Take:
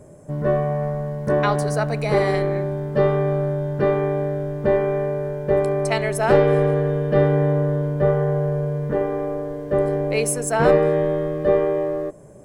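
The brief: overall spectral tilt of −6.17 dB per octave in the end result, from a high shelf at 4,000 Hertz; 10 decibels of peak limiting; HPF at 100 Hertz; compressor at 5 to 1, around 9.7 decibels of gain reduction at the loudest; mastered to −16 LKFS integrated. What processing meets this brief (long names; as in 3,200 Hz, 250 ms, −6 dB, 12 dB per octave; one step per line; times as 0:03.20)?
high-pass filter 100 Hz
high-shelf EQ 4,000 Hz −5 dB
downward compressor 5 to 1, threshold −21 dBFS
level +13.5 dB
brickwall limiter −8 dBFS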